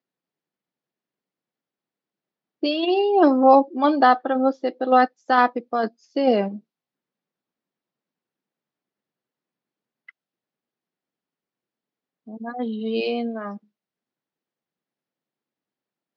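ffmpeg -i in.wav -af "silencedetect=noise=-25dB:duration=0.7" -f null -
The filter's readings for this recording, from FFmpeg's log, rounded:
silence_start: 0.00
silence_end: 2.63 | silence_duration: 2.63
silence_start: 6.48
silence_end: 12.46 | silence_duration: 5.98
silence_start: 13.50
silence_end: 16.17 | silence_duration: 2.67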